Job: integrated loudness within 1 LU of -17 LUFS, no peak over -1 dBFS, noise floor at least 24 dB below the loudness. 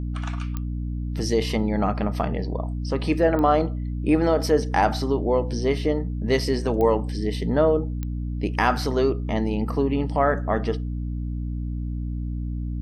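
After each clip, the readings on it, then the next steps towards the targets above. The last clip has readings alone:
clicks found 4; hum 60 Hz; highest harmonic 300 Hz; hum level -25 dBFS; loudness -24.0 LUFS; peak level -6.5 dBFS; loudness target -17.0 LUFS
-> de-click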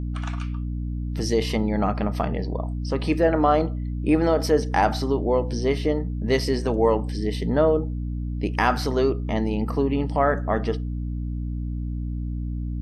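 clicks found 0; hum 60 Hz; highest harmonic 300 Hz; hum level -25 dBFS
-> hum notches 60/120/180/240/300 Hz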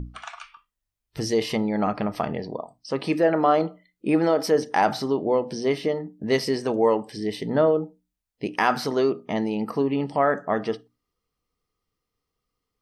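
hum not found; loudness -24.0 LUFS; peak level -7.0 dBFS; loudness target -17.0 LUFS
-> trim +7 dB; peak limiter -1 dBFS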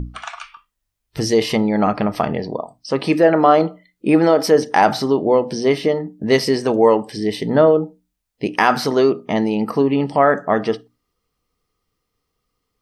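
loudness -17.5 LUFS; peak level -1.0 dBFS; noise floor -76 dBFS

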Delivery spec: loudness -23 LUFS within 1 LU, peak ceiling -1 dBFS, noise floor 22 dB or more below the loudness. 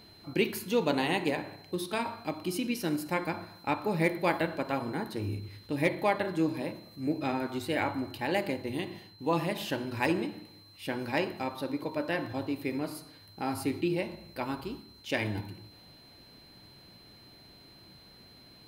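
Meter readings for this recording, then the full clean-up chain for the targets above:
steady tone 4.1 kHz; tone level -55 dBFS; loudness -32.5 LUFS; peak level -15.0 dBFS; loudness target -23.0 LUFS
-> band-stop 4.1 kHz, Q 30; trim +9.5 dB

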